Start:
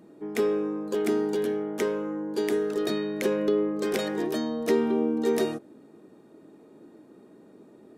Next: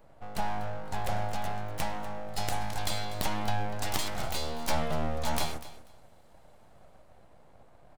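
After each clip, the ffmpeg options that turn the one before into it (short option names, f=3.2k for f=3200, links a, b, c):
-filter_complex "[0:a]acrossover=split=160|2600[a][b][c];[c]dynaudnorm=f=270:g=13:m=10dB[d];[a][b][d]amix=inputs=3:normalize=0,aeval=exprs='abs(val(0))':c=same,aecho=1:1:244|488:0.158|0.0269,volume=-3dB"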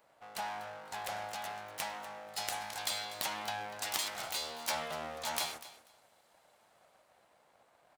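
-af "highpass=f=1.3k:p=1"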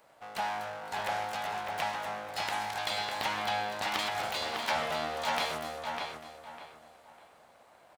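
-filter_complex "[0:a]acrossover=split=3900[a][b];[b]acompressor=threshold=-51dB:ratio=4:attack=1:release=60[c];[a][c]amix=inputs=2:normalize=0,asplit=2[d][e];[e]adelay=601,lowpass=f=2.9k:p=1,volume=-3dB,asplit=2[f][g];[g]adelay=601,lowpass=f=2.9k:p=1,volume=0.31,asplit=2[h][i];[i]adelay=601,lowpass=f=2.9k:p=1,volume=0.31,asplit=2[j][k];[k]adelay=601,lowpass=f=2.9k:p=1,volume=0.31[l];[d][f][h][j][l]amix=inputs=5:normalize=0,volume=6dB"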